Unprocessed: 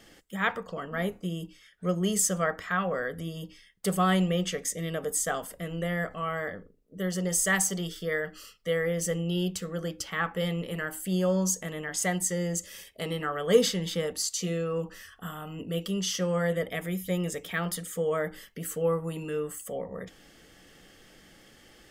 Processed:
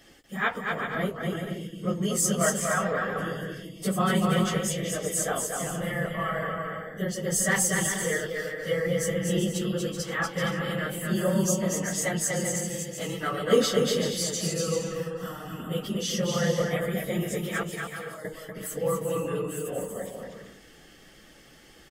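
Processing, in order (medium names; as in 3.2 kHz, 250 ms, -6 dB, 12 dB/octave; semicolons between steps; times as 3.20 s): phase randomisation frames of 50 ms; 17.63–18.25 s: feedback comb 270 Hz, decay 1.1 s, mix 80%; on a send: bouncing-ball echo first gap 240 ms, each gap 0.6×, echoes 5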